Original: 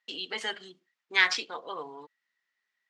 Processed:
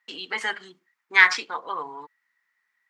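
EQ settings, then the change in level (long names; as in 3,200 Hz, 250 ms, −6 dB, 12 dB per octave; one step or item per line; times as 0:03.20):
tilt shelving filter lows +4 dB
flat-topped bell 1,400 Hz +10.5 dB
high-shelf EQ 4,200 Hz +11 dB
−1.5 dB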